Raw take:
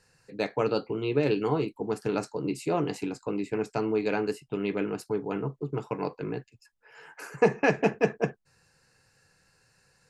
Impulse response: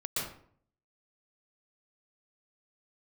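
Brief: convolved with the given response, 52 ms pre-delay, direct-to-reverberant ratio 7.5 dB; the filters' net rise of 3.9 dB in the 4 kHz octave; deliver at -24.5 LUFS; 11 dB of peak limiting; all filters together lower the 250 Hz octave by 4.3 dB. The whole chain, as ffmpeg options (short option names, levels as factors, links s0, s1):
-filter_complex "[0:a]equalizer=f=250:t=o:g=-6,equalizer=f=4000:t=o:g=5,alimiter=limit=0.106:level=0:latency=1,asplit=2[s0][s1];[1:a]atrim=start_sample=2205,adelay=52[s2];[s1][s2]afir=irnorm=-1:irlink=0,volume=0.237[s3];[s0][s3]amix=inputs=2:normalize=0,volume=2.51"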